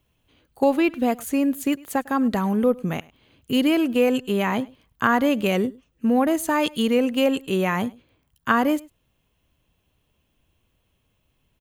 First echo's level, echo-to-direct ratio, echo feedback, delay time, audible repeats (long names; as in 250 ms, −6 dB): −23.0 dB, −23.0 dB, repeats not evenly spaced, 103 ms, 1